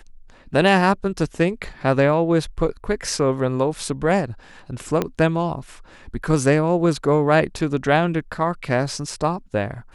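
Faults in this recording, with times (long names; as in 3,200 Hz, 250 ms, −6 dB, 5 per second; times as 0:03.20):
0:05.02: click −8 dBFS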